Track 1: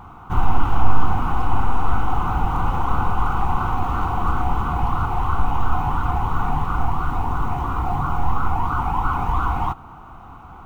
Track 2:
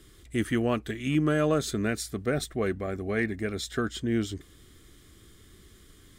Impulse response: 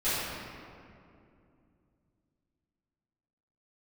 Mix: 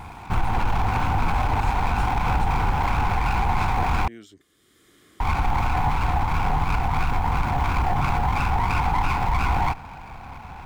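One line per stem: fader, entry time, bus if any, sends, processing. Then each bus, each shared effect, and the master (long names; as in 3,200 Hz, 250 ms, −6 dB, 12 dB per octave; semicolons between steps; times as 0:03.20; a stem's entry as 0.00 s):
+3.0 dB, 0.00 s, muted 0:04.08–0:05.20, no send, lower of the sound and its delayed copy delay 1.2 ms; brickwall limiter −16 dBFS, peak gain reduction 9 dB
−12.5 dB, 0.00 s, no send, high-pass filter 350 Hz 6 dB per octave; multiband upward and downward compressor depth 70%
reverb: not used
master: no processing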